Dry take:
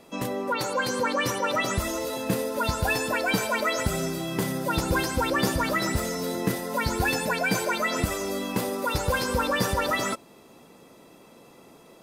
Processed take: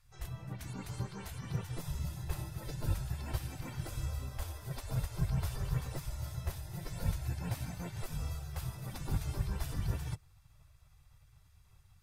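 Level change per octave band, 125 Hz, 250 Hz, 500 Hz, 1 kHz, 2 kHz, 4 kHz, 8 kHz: −3.0, −16.0, −23.0, −22.0, −24.0, −19.0, −16.5 decibels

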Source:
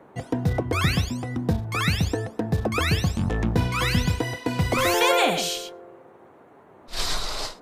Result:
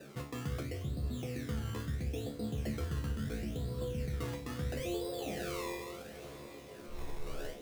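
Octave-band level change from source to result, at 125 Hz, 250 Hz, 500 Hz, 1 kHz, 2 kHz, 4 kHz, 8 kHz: −13.0, −13.0, −13.0, −20.5, −20.0, −21.0, −17.5 decibels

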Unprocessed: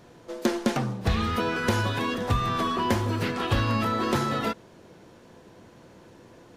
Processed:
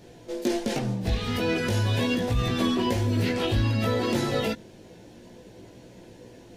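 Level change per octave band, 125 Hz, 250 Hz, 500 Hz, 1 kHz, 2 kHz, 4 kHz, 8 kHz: +2.0, +1.5, +2.0, −6.0, −2.0, +1.5, +1.0 decibels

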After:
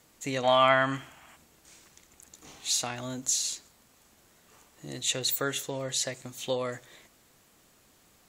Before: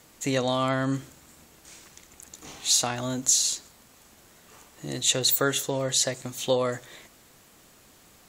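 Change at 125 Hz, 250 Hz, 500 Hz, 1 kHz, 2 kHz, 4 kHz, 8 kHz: −6.5, −6.5, −2.0, +3.0, +2.0, −4.5, −6.5 decibels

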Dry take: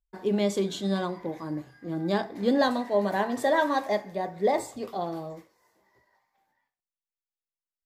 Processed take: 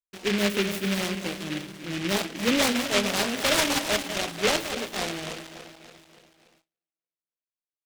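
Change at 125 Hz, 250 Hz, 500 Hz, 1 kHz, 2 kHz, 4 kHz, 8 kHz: +1.0, +0.5, −2.0, −3.0, +6.5, +12.5, +14.5 decibels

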